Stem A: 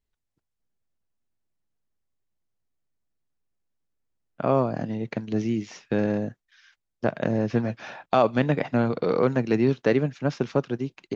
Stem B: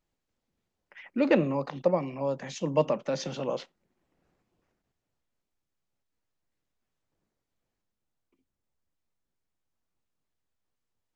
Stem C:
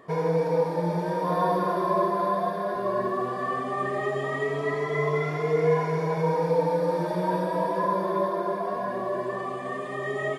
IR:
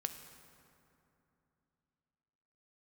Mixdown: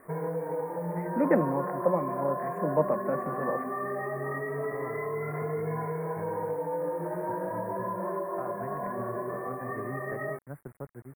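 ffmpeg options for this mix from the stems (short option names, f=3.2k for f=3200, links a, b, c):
-filter_complex "[0:a]asubboost=boost=5:cutoff=92,adelay=250,volume=-17dB[a];[1:a]volume=-1dB[b];[2:a]flanger=delay=19.5:depth=5.2:speed=0.28,volume=0dB[c];[a][c]amix=inputs=2:normalize=0,alimiter=limit=-24dB:level=0:latency=1:release=195,volume=0dB[d];[b][d]amix=inputs=2:normalize=0,acrusher=bits=8:mix=0:aa=0.000001,asuperstop=centerf=4400:order=12:qfactor=0.64"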